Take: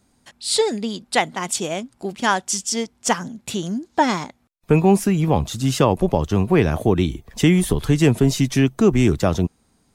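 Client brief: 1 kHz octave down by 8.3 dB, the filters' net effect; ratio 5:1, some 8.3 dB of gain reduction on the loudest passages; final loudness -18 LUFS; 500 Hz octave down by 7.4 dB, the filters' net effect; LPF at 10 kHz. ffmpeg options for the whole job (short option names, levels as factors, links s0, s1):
-af "lowpass=10000,equalizer=f=500:t=o:g=-8.5,equalizer=f=1000:t=o:g=-7.5,acompressor=threshold=0.0794:ratio=5,volume=2.99"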